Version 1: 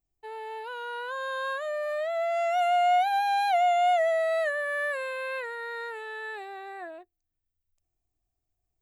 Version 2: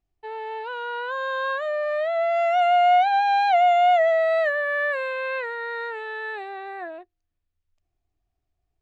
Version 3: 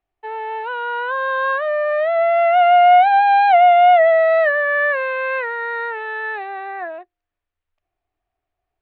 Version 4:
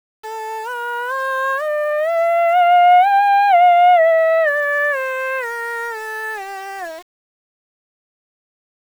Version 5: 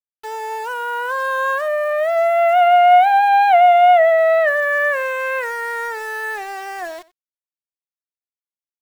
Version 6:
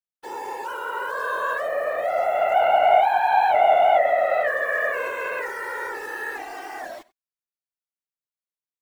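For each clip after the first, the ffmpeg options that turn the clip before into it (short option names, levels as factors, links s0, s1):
-af "lowpass=3900,volume=1.88"
-filter_complex "[0:a]acrossover=split=420 3200:gain=0.2 1 0.0891[s0][s1][s2];[s0][s1][s2]amix=inputs=3:normalize=0,volume=2.37"
-af "aeval=exprs='val(0)*gte(abs(val(0)),0.0211)':c=same"
-af "aecho=1:1:91:0.0841"
-af "afftfilt=real='hypot(re,im)*cos(2*PI*random(0))':imag='hypot(re,im)*sin(2*PI*random(1))':win_size=512:overlap=0.75"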